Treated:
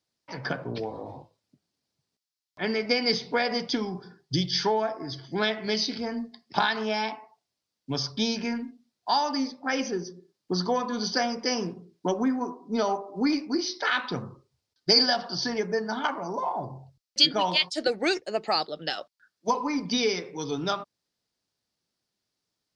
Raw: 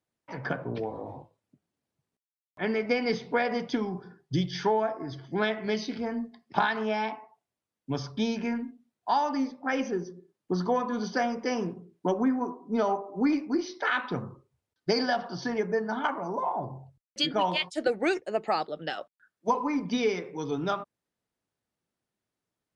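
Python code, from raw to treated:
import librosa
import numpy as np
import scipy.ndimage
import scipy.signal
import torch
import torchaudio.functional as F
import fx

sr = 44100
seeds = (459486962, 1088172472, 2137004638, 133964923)

y = fx.peak_eq(x, sr, hz=4800.0, db=14.0, octaves=0.99)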